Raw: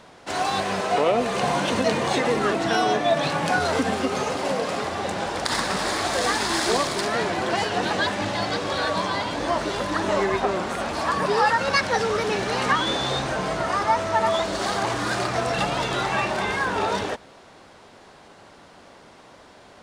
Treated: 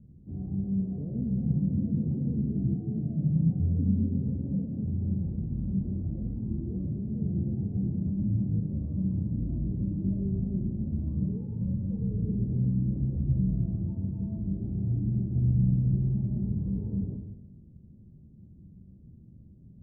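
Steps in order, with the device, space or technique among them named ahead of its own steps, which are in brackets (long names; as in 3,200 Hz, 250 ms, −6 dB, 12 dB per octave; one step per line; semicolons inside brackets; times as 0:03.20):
club heard from the street (brickwall limiter −15 dBFS, peak gain reduction 9 dB; low-pass filter 180 Hz 24 dB per octave; convolution reverb RT60 0.95 s, pre-delay 7 ms, DRR 0.5 dB)
level +7 dB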